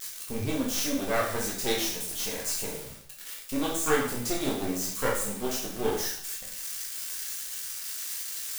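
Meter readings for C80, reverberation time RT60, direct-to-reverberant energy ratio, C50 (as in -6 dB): 9.0 dB, 0.65 s, -3.5 dB, 4.5 dB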